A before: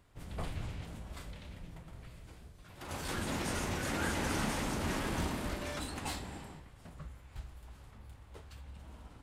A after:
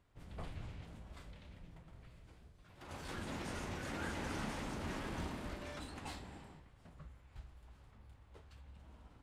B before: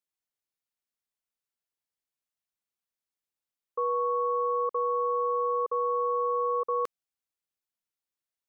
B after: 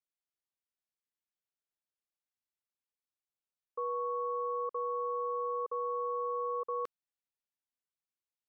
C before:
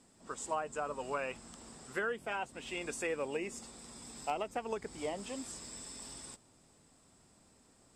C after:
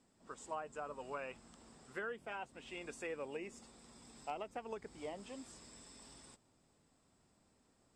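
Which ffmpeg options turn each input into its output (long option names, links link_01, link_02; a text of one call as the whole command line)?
ffmpeg -i in.wav -af "highshelf=frequency=8300:gain=-11,volume=-7dB" out.wav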